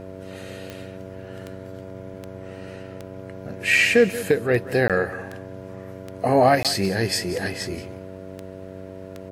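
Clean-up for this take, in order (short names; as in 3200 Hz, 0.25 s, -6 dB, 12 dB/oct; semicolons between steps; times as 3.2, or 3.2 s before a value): de-click; de-hum 94.5 Hz, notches 7; interpolate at 4.88/6.63, 17 ms; inverse comb 0.182 s -16 dB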